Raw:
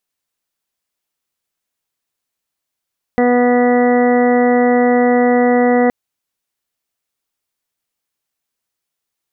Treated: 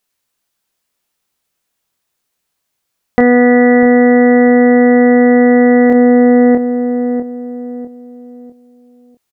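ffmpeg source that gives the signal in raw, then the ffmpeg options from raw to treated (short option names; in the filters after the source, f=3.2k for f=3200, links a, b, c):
-f lavfi -i "aevalsrc='0.224*sin(2*PI*245*t)+0.224*sin(2*PI*490*t)+0.141*sin(2*PI*735*t)+0.0316*sin(2*PI*980*t)+0.0355*sin(2*PI*1225*t)+0.0237*sin(2*PI*1470*t)+0.0251*sin(2*PI*1715*t)+0.0708*sin(2*PI*1960*t)':d=2.72:s=44100"
-filter_complex "[0:a]asplit=2[a][b];[b]adelay=25,volume=-5dB[c];[a][c]amix=inputs=2:normalize=0,asplit=2[d][e];[e]adelay=649,lowpass=f=900:p=1,volume=-5dB,asplit=2[f][g];[g]adelay=649,lowpass=f=900:p=1,volume=0.39,asplit=2[h][i];[i]adelay=649,lowpass=f=900:p=1,volume=0.39,asplit=2[j][k];[k]adelay=649,lowpass=f=900:p=1,volume=0.39,asplit=2[l][m];[m]adelay=649,lowpass=f=900:p=1,volume=0.39[n];[f][h][j][l][n]amix=inputs=5:normalize=0[o];[d][o]amix=inputs=2:normalize=0,alimiter=level_in=6.5dB:limit=-1dB:release=50:level=0:latency=1"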